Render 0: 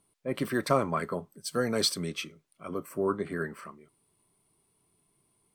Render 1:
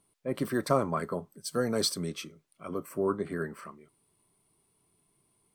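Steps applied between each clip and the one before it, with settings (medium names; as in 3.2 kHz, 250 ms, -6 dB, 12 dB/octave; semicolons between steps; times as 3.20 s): dynamic bell 2.5 kHz, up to -7 dB, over -48 dBFS, Q 1.1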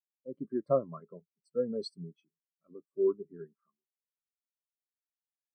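spectral contrast expander 2.5:1; trim -2 dB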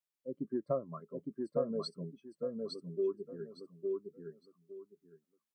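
compression 3:1, threshold -33 dBFS, peak gain reduction 9 dB; feedback delay 860 ms, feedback 22%, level -3 dB; trim +1 dB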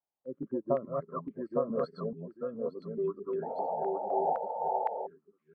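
chunks repeated in reverse 213 ms, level -2 dB; painted sound noise, 3.42–5.07 s, 440–920 Hz -38 dBFS; step-sequenced low-pass 3.9 Hz 790–2200 Hz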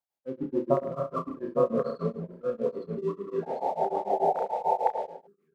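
in parallel at -4 dB: crossover distortion -48 dBFS; on the sum: reverse bouncing-ball echo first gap 30 ms, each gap 1.15×, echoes 5; tremolo of two beating tones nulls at 6.8 Hz; trim +1.5 dB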